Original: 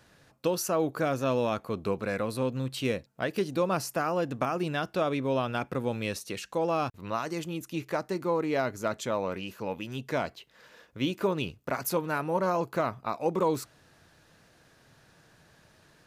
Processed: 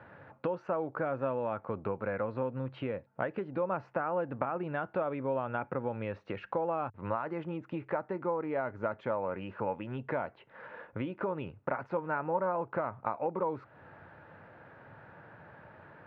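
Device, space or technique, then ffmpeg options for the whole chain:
bass amplifier: -af "acompressor=threshold=-40dB:ratio=5,highpass=89,equalizer=frequency=100:width_type=q:width=4:gain=6,equalizer=frequency=550:width_type=q:width=4:gain=6,equalizer=frequency=880:width_type=q:width=4:gain=8,equalizer=frequency=1400:width_type=q:width=4:gain=5,lowpass=frequency=2200:width=0.5412,lowpass=frequency=2200:width=1.3066,volume=5dB"

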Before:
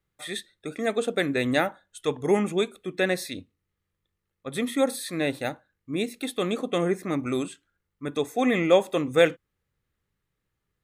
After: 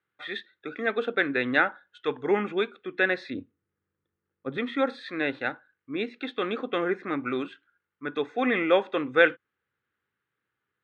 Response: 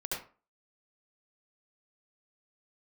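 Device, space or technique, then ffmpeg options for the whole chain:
guitar cabinet: -filter_complex "[0:a]highpass=frequency=230:poles=1,highpass=98,equalizer=frequency=170:width_type=q:width=4:gain=-8,equalizer=frequency=630:width_type=q:width=4:gain=-6,equalizer=frequency=1500:width_type=q:width=4:gain=10,lowpass=frequency=3500:width=0.5412,lowpass=frequency=3500:width=1.3066,asettb=1/sr,asplit=3[link_01][link_02][link_03];[link_01]atrim=end=3.304[link_04];[link_02]atrim=start=3.3:end=4.58,asetpts=PTS-STARTPTS,afade=type=in:duration=0.004:curve=qsin,afade=type=out:start_time=1.276:duration=0.004:curve=qsin,tiltshelf=frequency=830:gain=9[link_05];[link_03]atrim=start=4.576[link_06];[link_04][link_05]acrossfade=duration=0.004:curve1=hsin:curve2=qsin[link_07];[link_07][link_06]acrossfade=duration=0.004:curve1=qsin:curve2=hsin"

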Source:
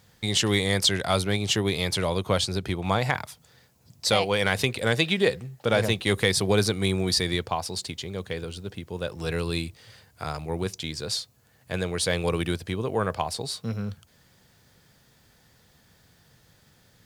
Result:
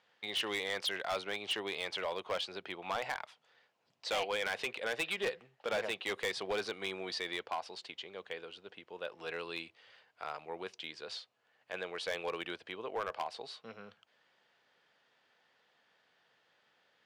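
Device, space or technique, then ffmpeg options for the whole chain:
megaphone: -af "highpass=540,lowpass=2900,equalizer=frequency=2900:width_type=o:width=0.36:gain=5,asoftclip=type=hard:threshold=-22.5dB,volume=-6.5dB"

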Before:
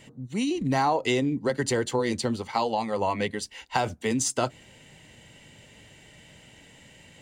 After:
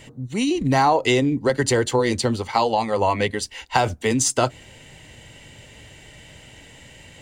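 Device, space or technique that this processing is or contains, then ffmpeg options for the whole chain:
low shelf boost with a cut just above: -af "lowshelf=frequency=110:gain=6.5,equalizer=frequency=190:width_type=o:width=0.84:gain=-5.5,volume=6.5dB"

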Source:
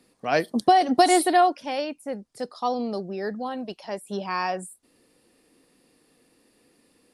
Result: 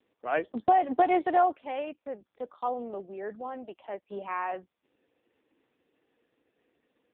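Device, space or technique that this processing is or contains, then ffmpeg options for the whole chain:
telephone: -af "highpass=310,lowpass=3400,volume=-4dB" -ar 8000 -c:a libopencore_amrnb -b:a 5150

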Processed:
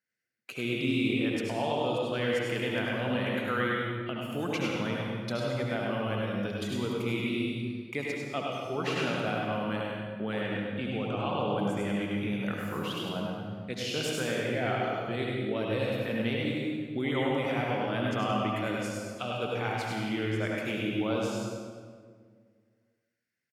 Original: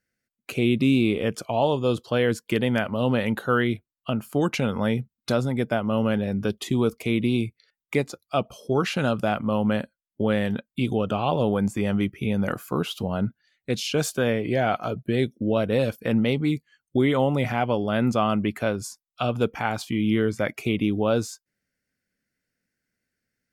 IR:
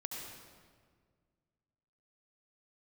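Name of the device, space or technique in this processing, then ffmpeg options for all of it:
PA in a hall: -filter_complex "[0:a]highpass=120,equalizer=frequency=2500:width_type=o:width=2.3:gain=6,aecho=1:1:101:0.562[link_01];[1:a]atrim=start_sample=2205[link_02];[link_01][link_02]afir=irnorm=-1:irlink=0,asettb=1/sr,asplit=3[link_03][link_04][link_05];[link_03]atrim=end=10.414[link_06];[link_04]atrim=start=10.41:end=11.59,asetpts=PTS-STARTPTS,afade=type=in:duration=0.004:curve=qsin,afade=type=out:start_time=1.176:duration=0.004:curve=qsin,highshelf=frequency=7600:gain=-11.5[link_07];[link_05]atrim=start=11.586[link_08];[link_06][link_07]acrossfade=duration=0.004:curve1=hsin:curve2=qsin[link_09];[link_09][link_08]acrossfade=duration=0.004:curve1=qsin:curve2=hsin,volume=-8.5dB"

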